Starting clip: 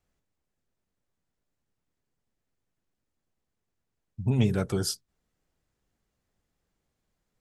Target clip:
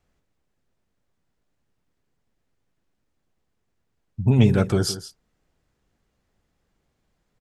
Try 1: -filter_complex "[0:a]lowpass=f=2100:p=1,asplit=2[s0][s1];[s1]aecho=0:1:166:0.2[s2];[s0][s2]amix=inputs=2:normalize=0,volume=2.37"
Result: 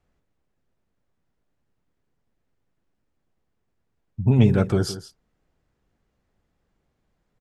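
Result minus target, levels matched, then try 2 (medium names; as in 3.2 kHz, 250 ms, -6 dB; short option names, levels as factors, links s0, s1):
4 kHz band -4.5 dB
-filter_complex "[0:a]lowpass=f=4900:p=1,asplit=2[s0][s1];[s1]aecho=0:1:166:0.2[s2];[s0][s2]amix=inputs=2:normalize=0,volume=2.37"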